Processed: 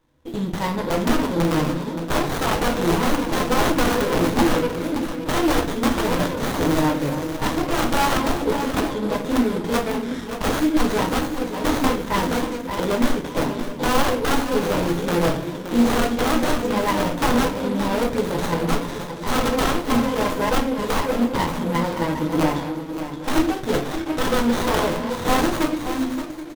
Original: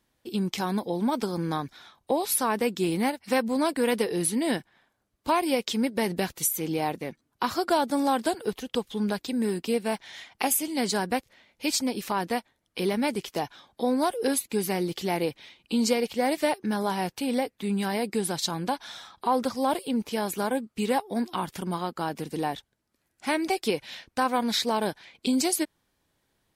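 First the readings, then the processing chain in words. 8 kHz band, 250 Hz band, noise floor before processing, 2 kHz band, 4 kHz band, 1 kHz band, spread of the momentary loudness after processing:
+0.5 dB, +7.0 dB, -76 dBFS, +8.0 dB, +4.5 dB, +6.0 dB, 5 LU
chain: backward echo that repeats 389 ms, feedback 48%, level -10.5 dB; rippled EQ curve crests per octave 1.1, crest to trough 13 dB; integer overflow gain 18.5 dB; on a send: delay 573 ms -10 dB; on the sum: simulated room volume 39 m³, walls mixed, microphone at 0.61 m; sliding maximum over 17 samples; trim +3 dB

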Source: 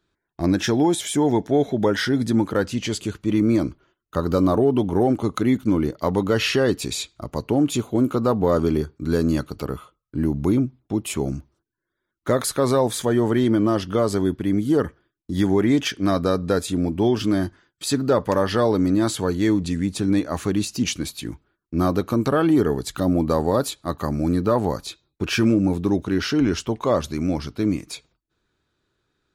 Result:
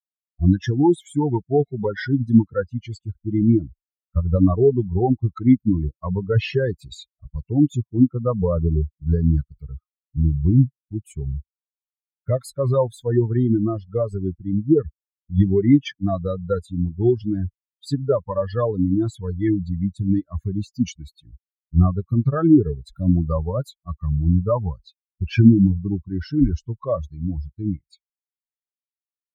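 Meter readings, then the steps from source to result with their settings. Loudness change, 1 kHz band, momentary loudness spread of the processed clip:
+0.5 dB, -6.0 dB, 13 LU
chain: expander on every frequency bin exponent 3; RIAA curve playback; trim +3 dB

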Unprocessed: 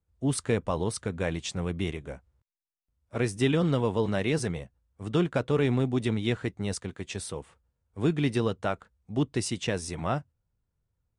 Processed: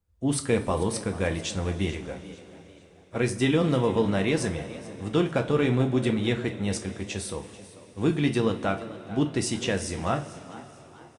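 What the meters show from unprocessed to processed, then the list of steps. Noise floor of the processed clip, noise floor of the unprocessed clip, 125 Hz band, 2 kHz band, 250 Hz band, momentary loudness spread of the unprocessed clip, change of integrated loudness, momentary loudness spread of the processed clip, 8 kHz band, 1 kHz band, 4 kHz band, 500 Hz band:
-53 dBFS, -81 dBFS, +1.0 dB, +3.0 dB, +3.0 dB, 13 LU, +2.5 dB, 15 LU, +3.0 dB, +3.0 dB, +3.0 dB, +2.5 dB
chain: frequency-shifting echo 441 ms, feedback 37%, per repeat +100 Hz, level -17.5 dB; two-slope reverb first 0.27 s, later 4.2 s, from -20 dB, DRR 4.5 dB; trim +1.5 dB

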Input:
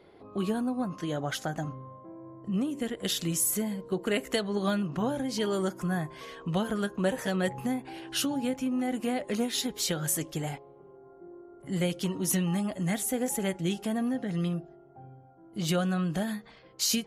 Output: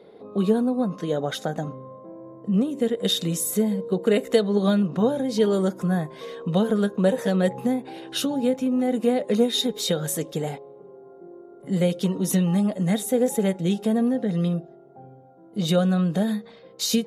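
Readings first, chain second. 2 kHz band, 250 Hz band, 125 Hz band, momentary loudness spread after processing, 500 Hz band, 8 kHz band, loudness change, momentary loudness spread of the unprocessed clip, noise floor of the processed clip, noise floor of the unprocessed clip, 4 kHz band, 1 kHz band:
+0.5 dB, +7.5 dB, +6.5 dB, 10 LU, +9.5 dB, 0.0 dB, +7.0 dB, 11 LU, -49 dBFS, -54 dBFS, +5.0 dB, +3.5 dB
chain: bass shelf 230 Hz -11 dB; small resonant body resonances 200/450/3700 Hz, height 15 dB, ringing for 25 ms

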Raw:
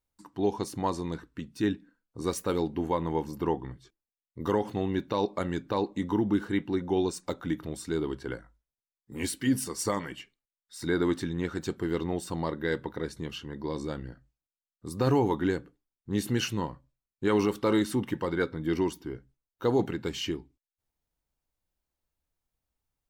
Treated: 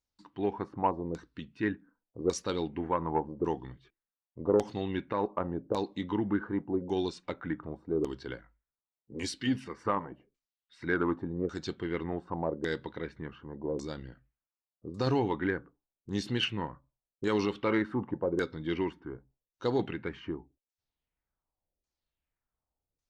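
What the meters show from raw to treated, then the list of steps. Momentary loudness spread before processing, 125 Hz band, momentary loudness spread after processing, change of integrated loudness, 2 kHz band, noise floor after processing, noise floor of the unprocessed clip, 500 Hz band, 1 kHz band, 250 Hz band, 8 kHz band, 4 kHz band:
12 LU, -4.5 dB, 13 LU, -3.0 dB, -0.5 dB, under -85 dBFS, under -85 dBFS, -2.5 dB, -1.0 dB, -3.5 dB, -9.0 dB, -1.5 dB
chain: wow and flutter 29 cents; LFO low-pass saw down 0.87 Hz 450–6800 Hz; Chebyshev shaper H 3 -21 dB, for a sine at -11 dBFS; trim -2 dB

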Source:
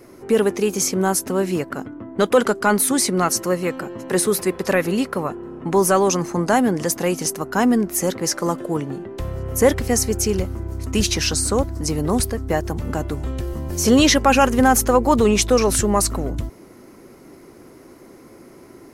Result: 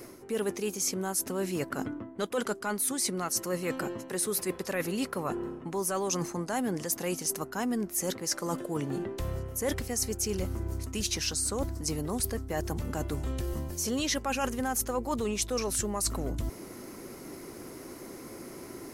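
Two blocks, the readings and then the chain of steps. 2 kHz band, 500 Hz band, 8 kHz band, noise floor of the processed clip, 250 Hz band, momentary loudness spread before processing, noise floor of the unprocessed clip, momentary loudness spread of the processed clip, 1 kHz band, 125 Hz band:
-13.0 dB, -14.0 dB, -9.0 dB, -46 dBFS, -13.5 dB, 12 LU, -45 dBFS, 14 LU, -14.5 dB, -11.0 dB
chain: treble shelf 3.6 kHz +7.5 dB; reverse; compression 5:1, threshold -30 dBFS, peak gain reduction 19 dB; reverse

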